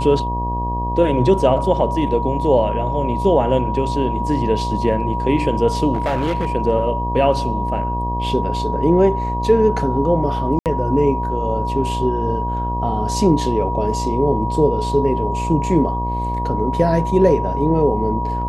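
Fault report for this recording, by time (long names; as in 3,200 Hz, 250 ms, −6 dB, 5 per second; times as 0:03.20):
mains buzz 60 Hz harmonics 19 −24 dBFS
whistle 960 Hz −23 dBFS
0:05.93–0:06.47: clipping −15.5 dBFS
0:10.59–0:10.66: drop-out 68 ms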